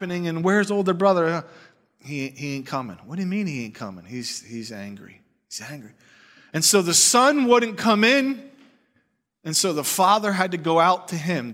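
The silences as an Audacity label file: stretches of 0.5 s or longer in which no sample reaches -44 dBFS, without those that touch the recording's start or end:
8.660000	9.440000	silence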